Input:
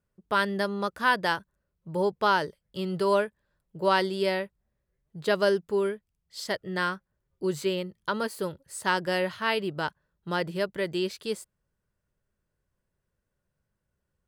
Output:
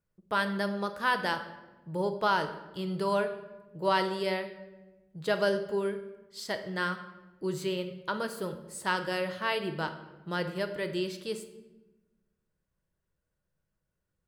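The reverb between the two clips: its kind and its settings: shoebox room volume 570 m³, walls mixed, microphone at 0.61 m; gain -4 dB

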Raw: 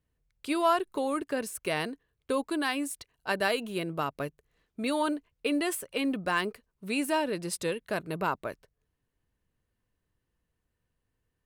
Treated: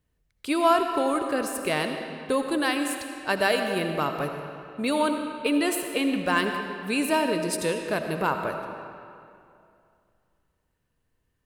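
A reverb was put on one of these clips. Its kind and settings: digital reverb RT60 2.5 s, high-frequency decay 0.75×, pre-delay 40 ms, DRR 5 dB; gain +4 dB

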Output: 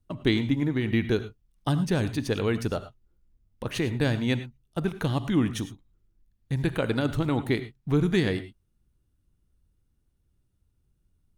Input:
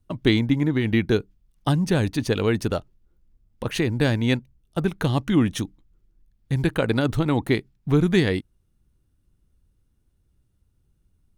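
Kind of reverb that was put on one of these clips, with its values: non-linear reverb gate 0.13 s rising, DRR 11.5 dB; gain -4.5 dB

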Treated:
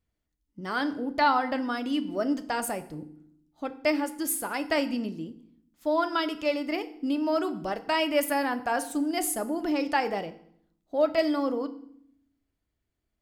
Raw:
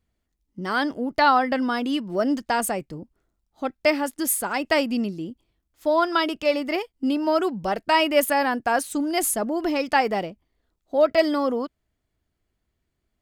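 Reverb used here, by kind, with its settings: FDN reverb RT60 0.66 s, low-frequency decay 1.55×, high-frequency decay 0.85×, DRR 9.5 dB; gain -6 dB

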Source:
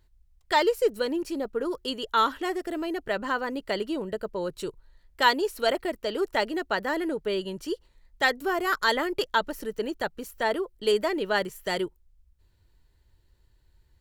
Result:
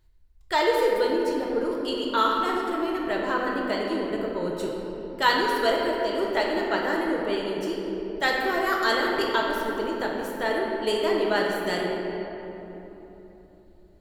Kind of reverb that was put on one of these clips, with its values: shoebox room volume 210 m³, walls hard, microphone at 0.62 m; gain -2 dB

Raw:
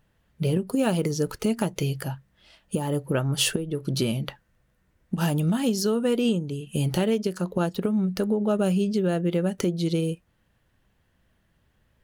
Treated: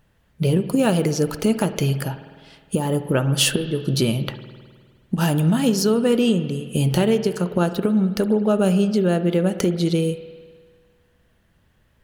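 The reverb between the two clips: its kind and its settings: spring tank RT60 1.7 s, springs 51 ms, chirp 25 ms, DRR 11 dB; gain +5 dB

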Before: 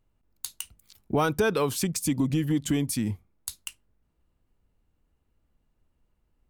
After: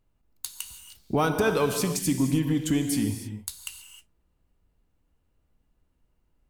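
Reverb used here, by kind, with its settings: non-linear reverb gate 0.34 s flat, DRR 5.5 dB

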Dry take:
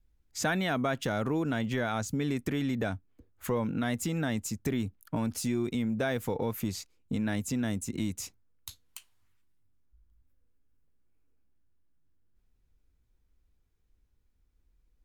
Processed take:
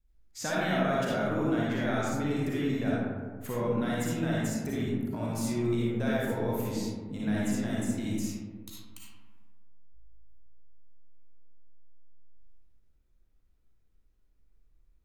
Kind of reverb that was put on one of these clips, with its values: digital reverb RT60 1.6 s, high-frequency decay 0.35×, pre-delay 15 ms, DRR -6.5 dB; gain -6.5 dB

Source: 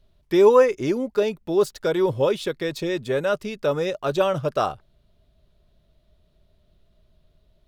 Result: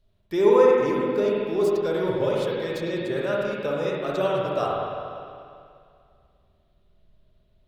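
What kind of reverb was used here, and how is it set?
spring tank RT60 2.3 s, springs 49/59 ms, chirp 55 ms, DRR -4 dB; gain -7 dB

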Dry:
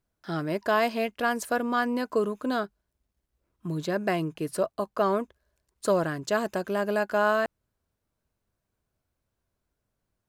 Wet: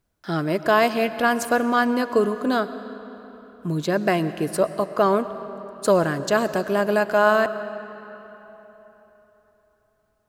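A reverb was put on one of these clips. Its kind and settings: digital reverb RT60 3.8 s, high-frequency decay 0.7×, pre-delay 70 ms, DRR 12.5 dB; gain +6 dB

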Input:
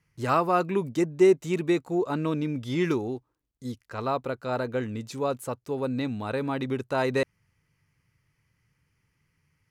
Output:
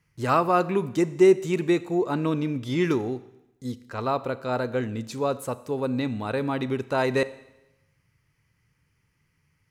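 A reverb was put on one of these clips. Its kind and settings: Schroeder reverb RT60 0.93 s, combs from 28 ms, DRR 15.5 dB; gain +2 dB

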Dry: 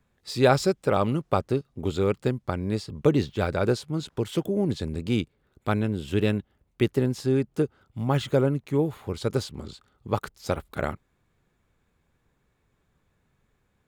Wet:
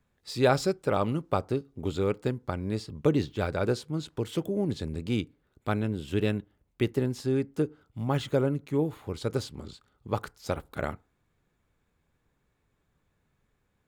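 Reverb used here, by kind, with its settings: FDN reverb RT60 0.34 s, low-frequency decay 1×, high-frequency decay 0.5×, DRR 19.5 dB; gain -3.5 dB

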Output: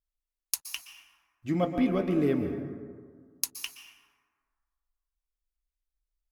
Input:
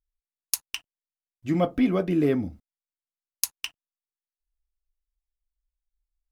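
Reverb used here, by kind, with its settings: plate-style reverb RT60 1.8 s, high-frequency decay 0.4×, pre-delay 0.11 s, DRR 7 dB; gain -4 dB

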